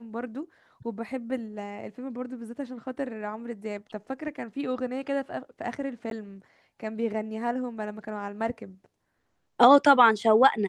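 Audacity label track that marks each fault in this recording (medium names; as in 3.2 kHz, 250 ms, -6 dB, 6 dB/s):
6.100000	6.110000	dropout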